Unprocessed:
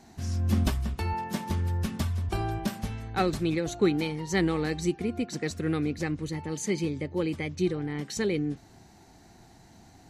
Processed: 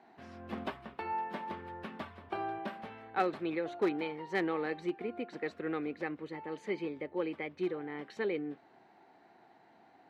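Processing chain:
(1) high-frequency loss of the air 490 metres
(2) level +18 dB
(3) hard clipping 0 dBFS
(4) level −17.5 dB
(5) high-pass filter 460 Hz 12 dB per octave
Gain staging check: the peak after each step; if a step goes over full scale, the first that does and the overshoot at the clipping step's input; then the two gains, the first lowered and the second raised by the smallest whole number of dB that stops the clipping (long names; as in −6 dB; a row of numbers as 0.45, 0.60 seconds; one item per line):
−13.5, +4.5, 0.0, −17.5, −15.5 dBFS
step 2, 4.5 dB
step 2 +13 dB, step 4 −12.5 dB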